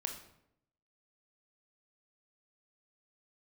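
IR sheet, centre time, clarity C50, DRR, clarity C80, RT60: 20 ms, 7.5 dB, 3.5 dB, 11.0 dB, 0.80 s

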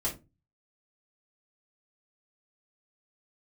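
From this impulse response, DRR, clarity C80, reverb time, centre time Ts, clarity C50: -5.5 dB, 19.5 dB, 0.25 s, 18 ms, 11.5 dB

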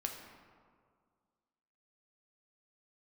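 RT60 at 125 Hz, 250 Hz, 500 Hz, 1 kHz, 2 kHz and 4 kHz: 2.1, 2.2, 2.0, 1.9, 1.4, 0.95 s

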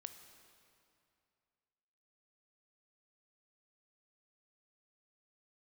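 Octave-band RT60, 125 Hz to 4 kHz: 2.7, 2.5, 2.5, 2.5, 2.3, 2.1 s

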